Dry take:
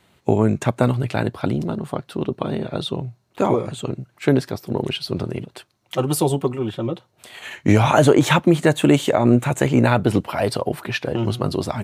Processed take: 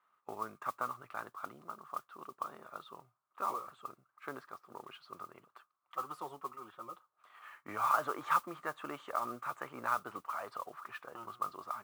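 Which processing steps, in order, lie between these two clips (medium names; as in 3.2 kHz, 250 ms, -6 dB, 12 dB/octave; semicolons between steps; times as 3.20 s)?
band-pass filter 1.2 kHz, Q 11; modulation noise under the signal 20 dB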